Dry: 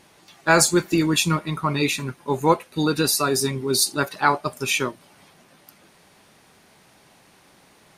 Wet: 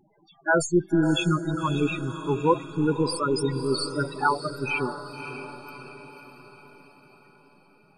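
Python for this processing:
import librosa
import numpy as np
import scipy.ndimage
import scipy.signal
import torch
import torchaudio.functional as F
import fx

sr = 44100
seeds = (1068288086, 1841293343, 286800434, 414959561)

y = np.where(x < 0.0, 10.0 ** (-3.0 / 20.0) * x, x)
y = fx.spec_topn(y, sr, count=8)
y = fx.echo_diffused(y, sr, ms=570, feedback_pct=52, wet_db=-10.0)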